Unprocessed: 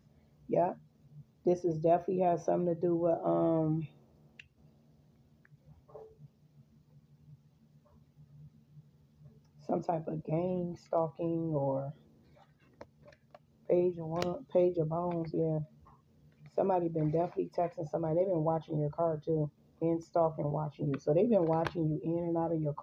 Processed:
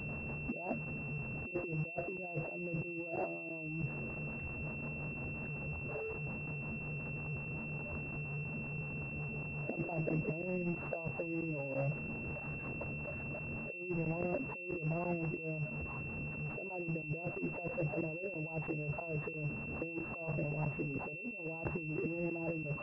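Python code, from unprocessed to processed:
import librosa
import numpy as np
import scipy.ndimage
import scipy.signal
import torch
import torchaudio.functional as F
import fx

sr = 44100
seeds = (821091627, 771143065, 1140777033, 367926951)

y = x + 0.5 * 10.0 ** (-39.0 / 20.0) * np.sign(x)
y = fx.rotary(y, sr, hz=5.5)
y = fx.over_compress(y, sr, threshold_db=-36.0, ratio=-0.5)
y = fx.buffer_crackle(y, sr, first_s=0.85, period_s=0.33, block=512, kind='zero')
y = fx.pwm(y, sr, carrier_hz=2700.0)
y = y * 10.0 ** (-1.5 / 20.0)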